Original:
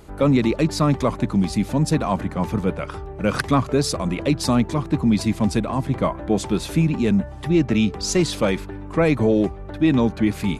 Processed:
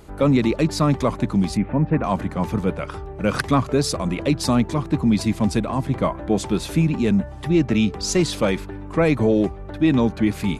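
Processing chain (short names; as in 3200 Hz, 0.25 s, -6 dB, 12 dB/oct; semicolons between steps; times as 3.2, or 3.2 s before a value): 1.57–2.04 steep low-pass 2400 Hz 36 dB/oct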